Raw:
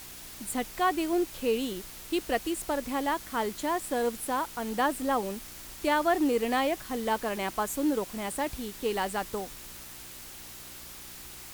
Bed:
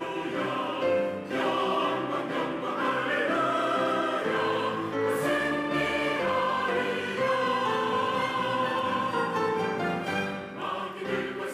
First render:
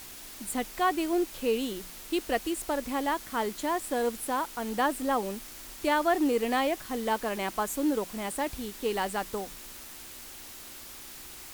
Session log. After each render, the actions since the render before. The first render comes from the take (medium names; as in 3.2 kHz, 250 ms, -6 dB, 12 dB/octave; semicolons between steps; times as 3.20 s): de-hum 60 Hz, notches 3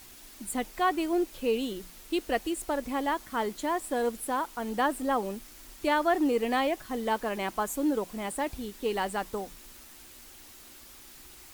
noise reduction 6 dB, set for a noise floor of -45 dBFS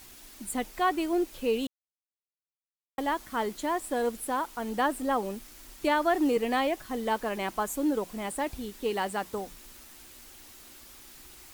1.67–2.98 s: mute; 5.84–6.37 s: three bands compressed up and down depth 40%; 8.91–9.38 s: high-pass 46 Hz 24 dB/octave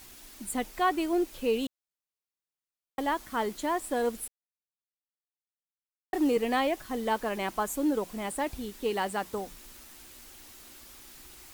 4.28–6.13 s: mute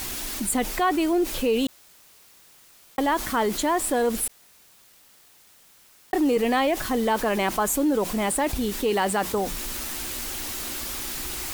in parallel at -1 dB: peak limiter -25 dBFS, peak gain reduction 9.5 dB; on the sum: level flattener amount 50%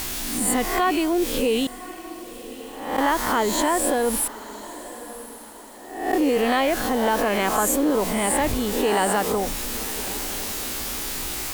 reverse spectral sustain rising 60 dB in 0.70 s; echo that smears into a reverb 1082 ms, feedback 43%, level -15.5 dB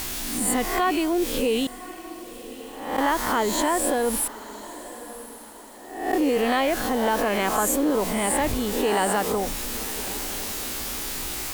trim -1.5 dB